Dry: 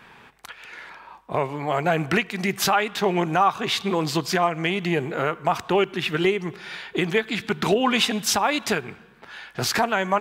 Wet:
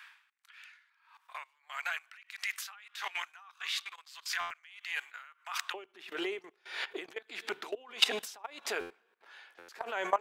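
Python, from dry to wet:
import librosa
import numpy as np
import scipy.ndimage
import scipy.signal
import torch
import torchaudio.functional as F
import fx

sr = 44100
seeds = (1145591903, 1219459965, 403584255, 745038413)

y = fx.highpass(x, sr, hz=fx.steps((0.0, 1300.0), (5.74, 380.0)), slope=24)
y = fx.level_steps(y, sr, step_db=19)
y = fx.buffer_glitch(y, sr, at_s=(4.4, 8.8, 9.58), block=512, repeats=8)
y = y * 10.0 ** (-21 * (0.5 - 0.5 * np.cos(2.0 * np.pi * 1.6 * np.arange(len(y)) / sr)) / 20.0)
y = F.gain(torch.from_numpy(y), 4.5).numpy()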